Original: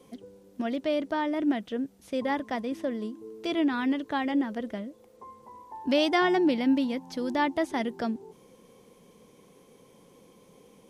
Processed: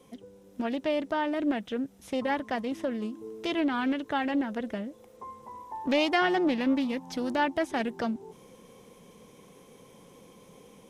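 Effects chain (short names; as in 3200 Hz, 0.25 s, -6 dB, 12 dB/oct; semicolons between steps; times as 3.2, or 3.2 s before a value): AGC gain up to 4.5 dB; bell 350 Hz -3 dB 1.4 oct; in parallel at -1 dB: compressor, threshold -33 dBFS, peak gain reduction 15.5 dB; on the sum: notch 4500 Hz, Q 11; Doppler distortion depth 0.32 ms; gain -5.5 dB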